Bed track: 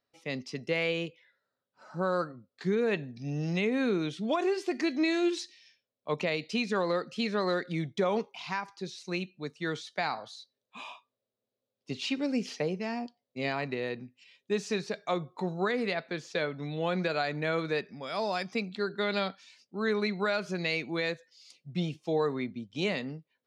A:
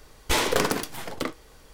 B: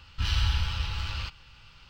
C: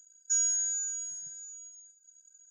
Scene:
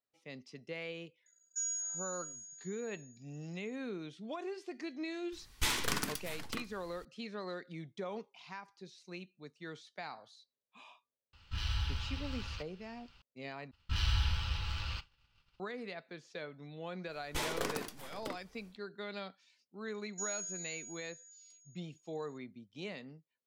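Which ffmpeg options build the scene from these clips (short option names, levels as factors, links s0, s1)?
-filter_complex "[3:a]asplit=2[s0][s1];[1:a]asplit=2[s2][s3];[2:a]asplit=2[s4][s5];[0:a]volume=0.224[s6];[s2]equalizer=f=530:w=1:g=-14.5[s7];[s5]agate=range=0.0224:threshold=0.00708:ratio=3:release=100:detection=peak[s8];[s6]asplit=2[s9][s10];[s9]atrim=end=13.714[s11];[s8]atrim=end=1.89,asetpts=PTS-STARTPTS,volume=0.531[s12];[s10]atrim=start=15.596[s13];[s0]atrim=end=2.5,asetpts=PTS-STARTPTS,volume=0.335,afade=t=in:d=0.004:c=hsin,afade=t=out:st=2.496:d=0.004:c=hsin,adelay=1260[s14];[s7]atrim=end=1.73,asetpts=PTS-STARTPTS,volume=0.447,afade=t=in:d=0.004:c=hsin,afade=t=out:st=1.726:d=0.004:c=hsin,adelay=5320[s15];[s4]atrim=end=1.89,asetpts=PTS-STARTPTS,volume=0.335,afade=t=in:d=0.004:c=hsin,afade=t=out:st=1.886:d=0.004:c=hsin,adelay=11330[s16];[s3]atrim=end=1.73,asetpts=PTS-STARTPTS,volume=0.211,afade=t=in:d=0.1,afade=t=out:st=1.63:d=0.1,adelay=17050[s17];[s1]atrim=end=2.5,asetpts=PTS-STARTPTS,volume=0.224,afade=t=in:d=0.004:c=hsin,afade=t=out:st=2.496:d=0.004:c=hsin,adelay=876708S[s18];[s11][s12]acrossfade=d=0.004:c1=hsin:c2=hsin[s19];[s19][s13]acrossfade=d=0.004:c1=hsin:c2=hsin[s20];[s20][s14][s15][s16][s17][s18]amix=inputs=6:normalize=0"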